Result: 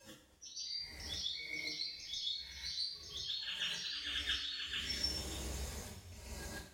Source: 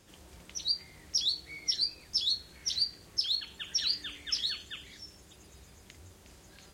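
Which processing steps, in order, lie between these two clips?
slow attack 643 ms; spectral noise reduction 14 dB; on a send: reverse echo 138 ms -4.5 dB; on the sum: two-slope reverb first 0.46 s, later 4 s, from -21 dB, DRR -8 dB; trim +1.5 dB

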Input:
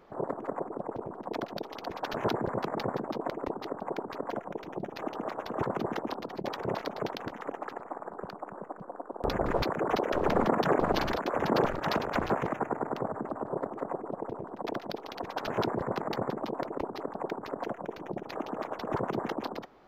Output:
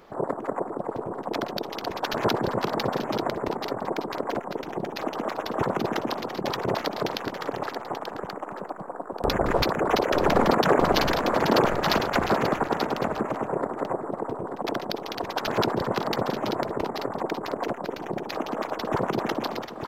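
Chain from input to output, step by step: treble shelf 2.8 kHz +7.5 dB; multi-tap echo 393/885 ms -15.5/-9 dB; trim +5 dB

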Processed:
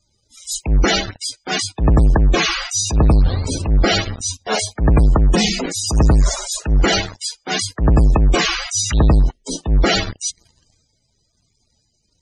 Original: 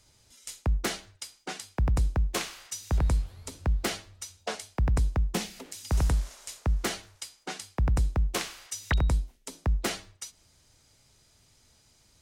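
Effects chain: waveshaping leveller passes 5; transient shaper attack -12 dB, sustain +6 dB; loudest bins only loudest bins 64; trim +7.5 dB

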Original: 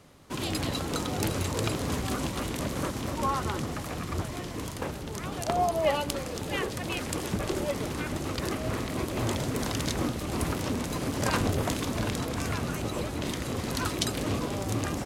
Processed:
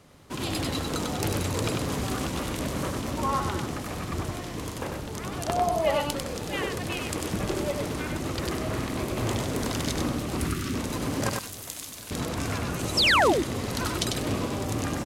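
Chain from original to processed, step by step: 11.29–12.11 s: pre-emphasis filter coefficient 0.9; 10.38–10.75 s: time-frequency box 420–1100 Hz -14 dB; 12.79–13.28 s: peaking EQ 8.9 kHz +8.5 dB 1.9 oct; 12.97–13.33 s: painted sound fall 280–5800 Hz -21 dBFS; delay 97 ms -4 dB

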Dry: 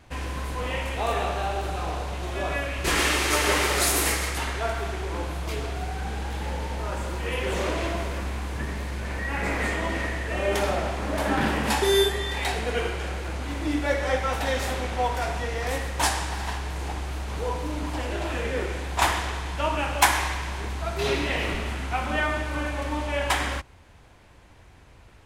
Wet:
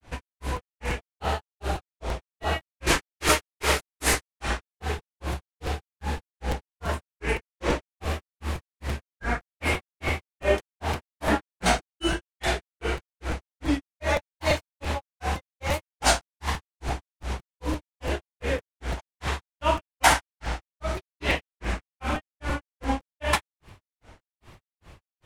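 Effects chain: granulator 213 ms, grains 2.5 per s, spray 36 ms, pitch spread up and down by 3 st; crackling interface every 0.17 s, samples 256, repeat, from 0.56 s; trim +4.5 dB

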